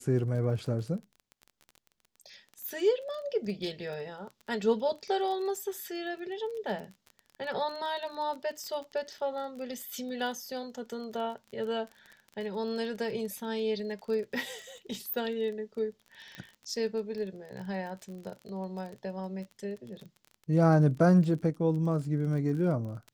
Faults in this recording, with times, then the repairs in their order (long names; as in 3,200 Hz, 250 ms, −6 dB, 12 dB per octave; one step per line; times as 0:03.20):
surface crackle 24 per second −38 dBFS
0:16.35: click −27 dBFS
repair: click removal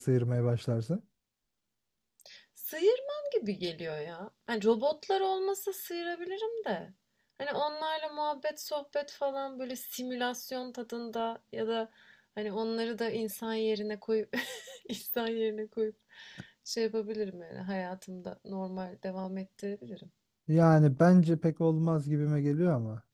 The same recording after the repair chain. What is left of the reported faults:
none of them is left